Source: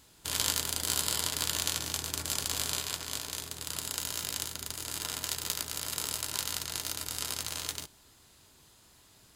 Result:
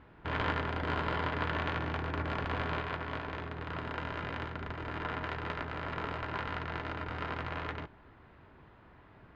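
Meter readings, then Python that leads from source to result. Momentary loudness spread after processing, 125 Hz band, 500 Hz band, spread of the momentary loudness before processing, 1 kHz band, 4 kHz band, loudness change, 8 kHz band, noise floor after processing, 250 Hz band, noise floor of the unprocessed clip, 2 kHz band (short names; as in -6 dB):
7 LU, +7.5 dB, +7.5 dB, 7 LU, +7.5 dB, -12.5 dB, -4.0 dB, under -35 dB, -58 dBFS, +7.5 dB, -60 dBFS, +4.5 dB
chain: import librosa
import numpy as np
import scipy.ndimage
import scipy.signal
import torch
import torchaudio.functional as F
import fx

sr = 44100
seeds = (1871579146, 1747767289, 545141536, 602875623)

y = scipy.signal.sosfilt(scipy.signal.butter(4, 2000.0, 'lowpass', fs=sr, output='sos'), x)
y = y * 10.0 ** (7.5 / 20.0)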